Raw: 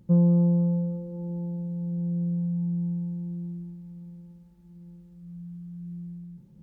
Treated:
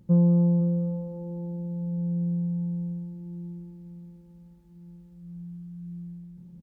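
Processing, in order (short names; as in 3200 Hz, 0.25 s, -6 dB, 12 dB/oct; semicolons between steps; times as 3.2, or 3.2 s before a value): echo 0.506 s -10 dB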